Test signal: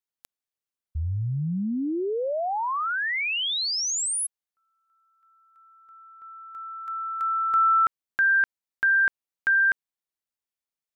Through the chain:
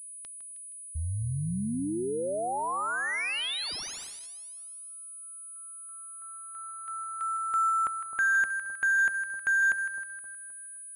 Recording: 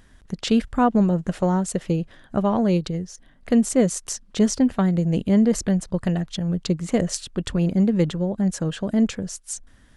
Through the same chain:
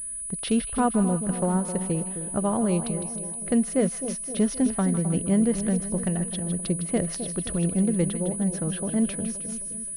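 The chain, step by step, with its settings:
echo with a time of its own for lows and highs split 970 Hz, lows 261 ms, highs 157 ms, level −10 dB
switching amplifier with a slow clock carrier 9,900 Hz
level −4.5 dB

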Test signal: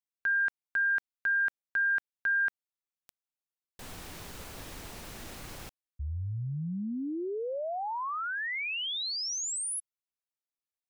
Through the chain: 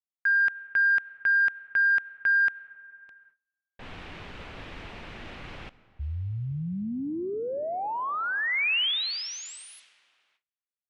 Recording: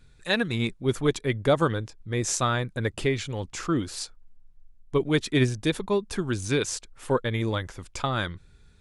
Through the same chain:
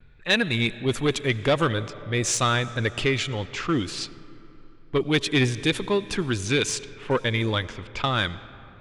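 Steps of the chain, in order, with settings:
comb and all-pass reverb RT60 3.5 s, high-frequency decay 0.85×, pre-delay 50 ms, DRR 17.5 dB
noise gate with hold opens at −54 dBFS, closes at −56 dBFS, hold 118 ms, range −29 dB
low-pass that shuts in the quiet parts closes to 1,800 Hz, open at −23 dBFS
soft clipping −17 dBFS
parametric band 2,800 Hz +7.5 dB 1.3 octaves
level +2.5 dB

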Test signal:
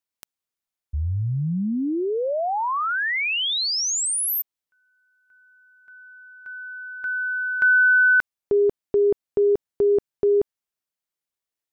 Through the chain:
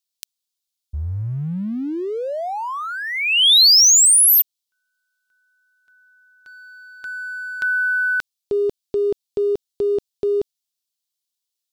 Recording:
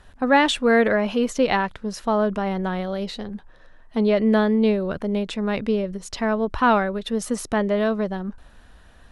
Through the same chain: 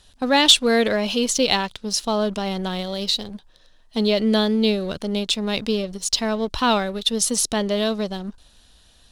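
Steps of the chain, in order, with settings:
high shelf with overshoot 2,600 Hz +13 dB, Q 1.5
leveller curve on the samples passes 1
level −4.5 dB

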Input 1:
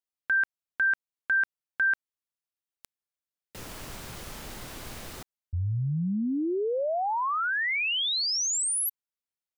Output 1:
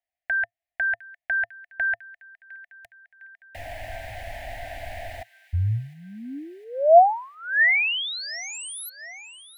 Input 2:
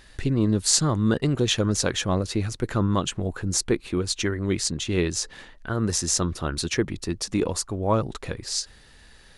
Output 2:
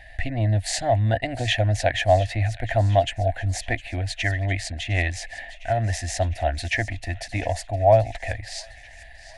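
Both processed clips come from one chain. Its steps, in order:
drawn EQ curve 110 Hz 0 dB, 150 Hz −24 dB, 280 Hz −11 dB, 420 Hz −25 dB, 690 Hz +14 dB, 1,200 Hz −29 dB, 1,800 Hz +6 dB, 3,500 Hz −8 dB, 5,900 Hz −16 dB, 10,000 Hz −14 dB
on a send: delay with a high-pass on its return 707 ms, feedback 64%, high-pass 1,800 Hz, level −16 dB
on the sum: level +6 dB

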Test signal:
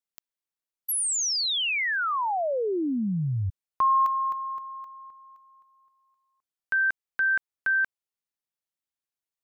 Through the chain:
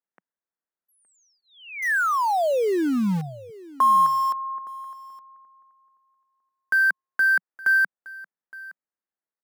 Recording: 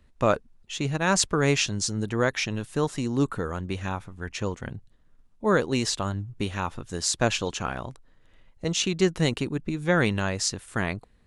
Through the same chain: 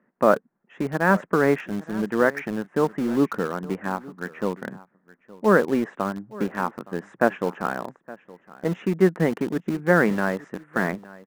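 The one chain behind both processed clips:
elliptic band-pass filter 180–1,800 Hz, stop band 40 dB
in parallel at −11.5 dB: bit reduction 5 bits
on the sum: single-tap delay 867 ms −20 dB
level +3 dB

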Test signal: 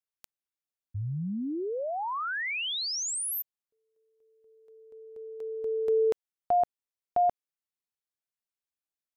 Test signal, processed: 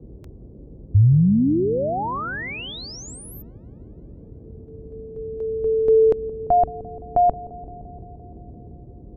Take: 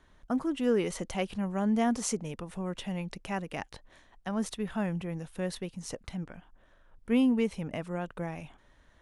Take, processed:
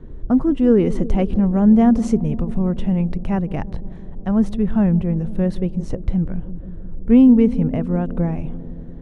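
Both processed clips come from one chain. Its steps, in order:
noise in a band 38–460 Hz −59 dBFS
spectral tilt −4.5 dB per octave
delay with a low-pass on its return 172 ms, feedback 74%, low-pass 520 Hz, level −15 dB
level +5.5 dB

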